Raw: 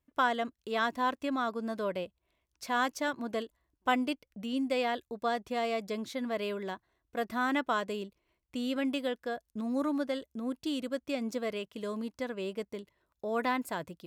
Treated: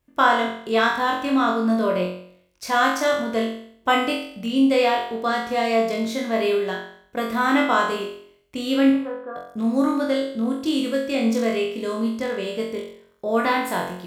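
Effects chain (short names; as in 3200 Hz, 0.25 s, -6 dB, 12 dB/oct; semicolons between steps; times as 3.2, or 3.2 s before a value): 8.9–9.36 ladder low-pass 1400 Hz, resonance 55%; on a send: flutter echo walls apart 3.8 m, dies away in 0.61 s; on the sum: gain +7.5 dB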